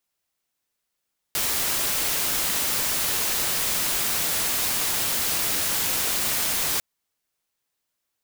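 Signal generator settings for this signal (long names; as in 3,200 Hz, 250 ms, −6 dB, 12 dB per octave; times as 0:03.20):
noise white, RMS −24.5 dBFS 5.45 s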